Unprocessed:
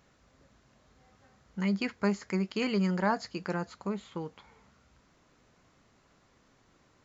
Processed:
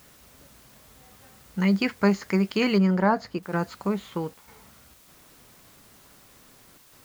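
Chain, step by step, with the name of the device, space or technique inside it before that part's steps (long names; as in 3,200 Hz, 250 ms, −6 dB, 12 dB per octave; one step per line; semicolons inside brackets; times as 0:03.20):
worn cassette (low-pass filter 6,600 Hz; tape wow and flutter 28 cents; tape dropouts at 0:03.39/0:04.34/0:04.94/0:06.78, 137 ms −9 dB; white noise bed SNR 28 dB)
0:02.78–0:03.43: high-shelf EQ 2,300 Hz −10 dB
level +7.5 dB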